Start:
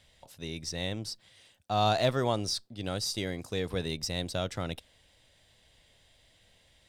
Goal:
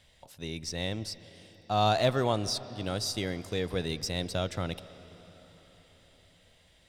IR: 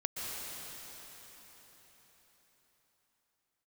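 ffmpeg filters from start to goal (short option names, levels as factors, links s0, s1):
-filter_complex "[0:a]asplit=2[s0][s1];[1:a]atrim=start_sample=2205,lowpass=4000[s2];[s1][s2]afir=irnorm=-1:irlink=0,volume=0.141[s3];[s0][s3]amix=inputs=2:normalize=0"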